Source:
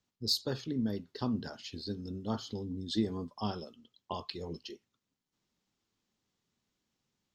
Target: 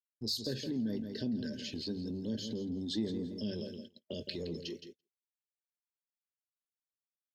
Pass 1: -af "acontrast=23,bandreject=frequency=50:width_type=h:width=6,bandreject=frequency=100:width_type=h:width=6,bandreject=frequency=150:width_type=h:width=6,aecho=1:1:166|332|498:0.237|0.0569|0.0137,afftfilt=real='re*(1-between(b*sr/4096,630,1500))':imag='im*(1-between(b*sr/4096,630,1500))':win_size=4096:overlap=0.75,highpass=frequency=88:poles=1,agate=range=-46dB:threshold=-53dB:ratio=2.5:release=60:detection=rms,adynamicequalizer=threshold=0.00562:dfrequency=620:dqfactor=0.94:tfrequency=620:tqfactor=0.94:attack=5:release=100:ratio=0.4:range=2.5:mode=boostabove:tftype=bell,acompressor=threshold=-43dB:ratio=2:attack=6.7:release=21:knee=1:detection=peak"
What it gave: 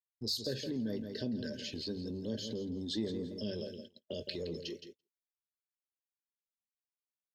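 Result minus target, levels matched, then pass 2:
500 Hz band +2.5 dB
-af "acontrast=23,bandreject=frequency=50:width_type=h:width=6,bandreject=frequency=100:width_type=h:width=6,bandreject=frequency=150:width_type=h:width=6,aecho=1:1:166|332|498:0.237|0.0569|0.0137,afftfilt=real='re*(1-between(b*sr/4096,630,1500))':imag='im*(1-between(b*sr/4096,630,1500))':win_size=4096:overlap=0.75,highpass=frequency=88:poles=1,agate=range=-46dB:threshold=-53dB:ratio=2.5:release=60:detection=rms,adynamicequalizer=threshold=0.00562:dfrequency=240:dqfactor=0.94:tfrequency=240:tqfactor=0.94:attack=5:release=100:ratio=0.4:range=2.5:mode=boostabove:tftype=bell,acompressor=threshold=-43dB:ratio=2:attack=6.7:release=21:knee=1:detection=peak"

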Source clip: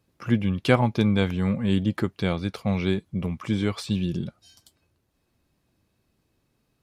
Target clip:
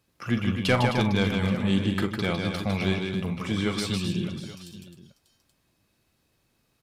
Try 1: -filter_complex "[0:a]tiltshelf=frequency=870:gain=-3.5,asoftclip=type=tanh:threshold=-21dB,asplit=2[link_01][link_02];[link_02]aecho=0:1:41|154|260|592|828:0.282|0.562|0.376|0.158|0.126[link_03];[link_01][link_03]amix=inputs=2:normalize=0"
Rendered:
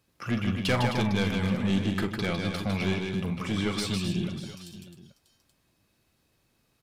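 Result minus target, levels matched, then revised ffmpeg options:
soft clipping: distortion +7 dB
-filter_complex "[0:a]tiltshelf=frequency=870:gain=-3.5,asoftclip=type=tanh:threshold=-13dB,asplit=2[link_01][link_02];[link_02]aecho=0:1:41|154|260|592|828:0.282|0.562|0.376|0.158|0.126[link_03];[link_01][link_03]amix=inputs=2:normalize=0"

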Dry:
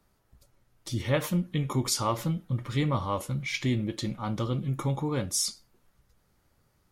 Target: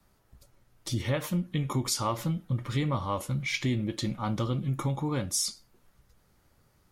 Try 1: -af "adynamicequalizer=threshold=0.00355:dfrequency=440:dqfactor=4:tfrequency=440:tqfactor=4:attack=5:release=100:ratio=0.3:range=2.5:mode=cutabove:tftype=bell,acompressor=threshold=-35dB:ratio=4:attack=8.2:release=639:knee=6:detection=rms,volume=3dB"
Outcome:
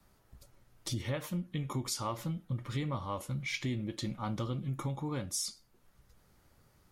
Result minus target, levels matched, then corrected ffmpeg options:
downward compressor: peak gain reduction +7 dB
-af "adynamicequalizer=threshold=0.00355:dfrequency=440:dqfactor=4:tfrequency=440:tqfactor=4:attack=5:release=100:ratio=0.3:range=2.5:mode=cutabove:tftype=bell,acompressor=threshold=-26dB:ratio=4:attack=8.2:release=639:knee=6:detection=rms,volume=3dB"

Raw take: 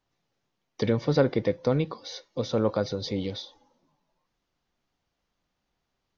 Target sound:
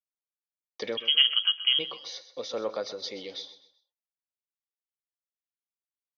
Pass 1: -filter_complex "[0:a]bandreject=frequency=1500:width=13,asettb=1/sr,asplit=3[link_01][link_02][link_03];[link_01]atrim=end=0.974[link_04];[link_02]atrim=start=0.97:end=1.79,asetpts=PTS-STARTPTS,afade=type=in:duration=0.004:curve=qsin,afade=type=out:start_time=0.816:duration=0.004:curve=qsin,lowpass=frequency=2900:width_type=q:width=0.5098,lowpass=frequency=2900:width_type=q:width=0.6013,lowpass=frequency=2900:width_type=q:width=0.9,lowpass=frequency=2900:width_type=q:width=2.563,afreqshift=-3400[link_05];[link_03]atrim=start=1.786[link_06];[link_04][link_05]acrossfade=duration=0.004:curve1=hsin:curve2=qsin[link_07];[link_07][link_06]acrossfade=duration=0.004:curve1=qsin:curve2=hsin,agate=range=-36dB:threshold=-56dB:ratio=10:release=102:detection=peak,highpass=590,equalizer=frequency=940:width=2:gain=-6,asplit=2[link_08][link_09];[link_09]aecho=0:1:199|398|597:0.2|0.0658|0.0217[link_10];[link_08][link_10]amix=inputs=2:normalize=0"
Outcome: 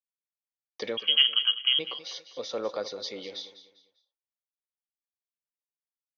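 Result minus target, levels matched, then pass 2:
echo 71 ms late
-filter_complex "[0:a]bandreject=frequency=1500:width=13,asettb=1/sr,asplit=3[link_01][link_02][link_03];[link_01]atrim=end=0.974[link_04];[link_02]atrim=start=0.97:end=1.79,asetpts=PTS-STARTPTS,afade=type=in:duration=0.004:curve=qsin,afade=type=out:start_time=0.816:duration=0.004:curve=qsin,lowpass=frequency=2900:width_type=q:width=0.5098,lowpass=frequency=2900:width_type=q:width=0.6013,lowpass=frequency=2900:width_type=q:width=0.9,lowpass=frequency=2900:width_type=q:width=2.563,afreqshift=-3400[link_05];[link_03]atrim=start=1.786[link_06];[link_04][link_05]acrossfade=duration=0.004:curve1=hsin:curve2=qsin[link_07];[link_07][link_06]acrossfade=duration=0.004:curve1=qsin:curve2=hsin,agate=range=-36dB:threshold=-56dB:ratio=10:release=102:detection=peak,highpass=590,equalizer=frequency=940:width=2:gain=-6,asplit=2[link_08][link_09];[link_09]aecho=0:1:128|256|384:0.2|0.0658|0.0217[link_10];[link_08][link_10]amix=inputs=2:normalize=0"

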